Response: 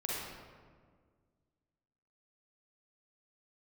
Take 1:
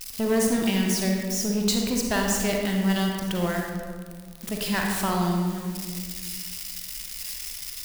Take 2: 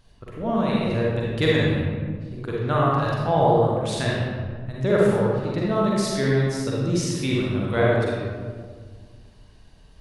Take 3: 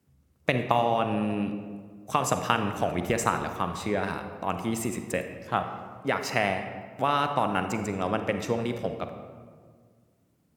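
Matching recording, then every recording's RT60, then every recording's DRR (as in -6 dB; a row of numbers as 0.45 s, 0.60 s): 2; 1.8 s, 1.7 s, 1.8 s; 0.0 dB, -5.5 dB, 7.0 dB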